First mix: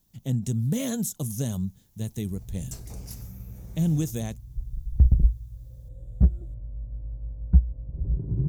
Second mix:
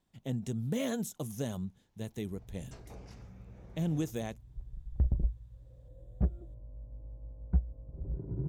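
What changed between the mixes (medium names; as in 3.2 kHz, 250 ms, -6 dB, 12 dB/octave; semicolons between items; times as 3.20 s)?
first sound: add distance through air 110 m; master: add tone controls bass -11 dB, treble -12 dB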